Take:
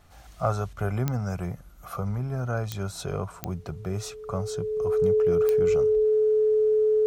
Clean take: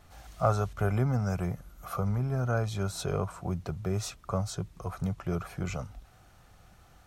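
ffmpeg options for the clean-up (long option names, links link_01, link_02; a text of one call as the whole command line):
ffmpeg -i in.wav -af "adeclick=threshold=4,bandreject=frequency=430:width=30" out.wav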